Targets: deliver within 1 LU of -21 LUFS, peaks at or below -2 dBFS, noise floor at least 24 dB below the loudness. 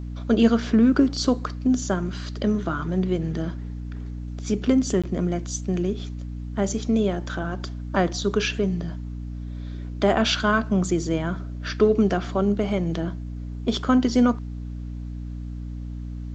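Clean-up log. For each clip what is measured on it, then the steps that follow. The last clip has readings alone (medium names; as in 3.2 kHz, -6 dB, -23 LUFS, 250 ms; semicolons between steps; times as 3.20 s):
dropouts 1; longest dropout 16 ms; hum 60 Hz; highest harmonic 300 Hz; hum level -30 dBFS; loudness -23.5 LUFS; peak level -6.5 dBFS; loudness target -21.0 LUFS
-> interpolate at 5.02 s, 16 ms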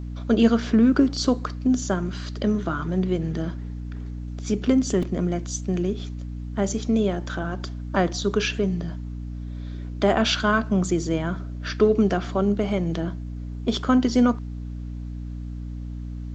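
dropouts 0; hum 60 Hz; highest harmonic 300 Hz; hum level -30 dBFS
-> de-hum 60 Hz, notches 5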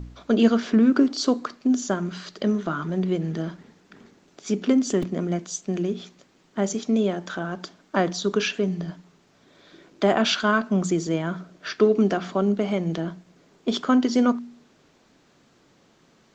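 hum not found; loudness -24.0 LUFS; peak level -7.0 dBFS; loudness target -21.0 LUFS
-> trim +3 dB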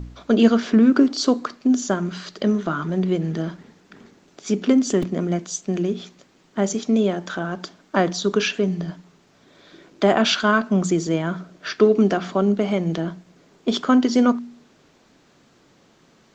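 loudness -21.0 LUFS; peak level -4.0 dBFS; noise floor -57 dBFS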